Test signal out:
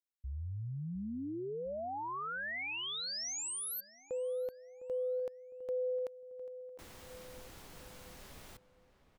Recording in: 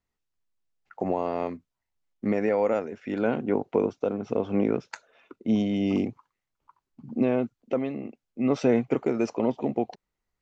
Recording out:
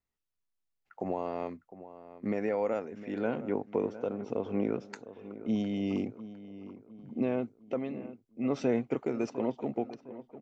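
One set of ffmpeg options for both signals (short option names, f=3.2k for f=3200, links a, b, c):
-filter_complex "[0:a]asplit=2[a][b];[b]adelay=707,lowpass=f=2.2k:p=1,volume=-14.5dB,asplit=2[c][d];[d]adelay=707,lowpass=f=2.2k:p=1,volume=0.46,asplit=2[e][f];[f]adelay=707,lowpass=f=2.2k:p=1,volume=0.46,asplit=2[g][h];[h]adelay=707,lowpass=f=2.2k:p=1,volume=0.46[i];[a][c][e][g][i]amix=inputs=5:normalize=0,volume=-6.5dB"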